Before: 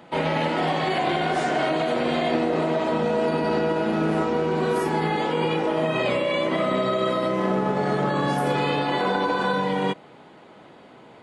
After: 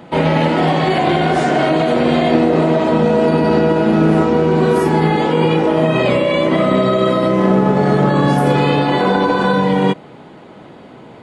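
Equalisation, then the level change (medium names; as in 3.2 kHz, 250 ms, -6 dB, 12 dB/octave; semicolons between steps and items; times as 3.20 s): bass shelf 380 Hz +8 dB; +6.0 dB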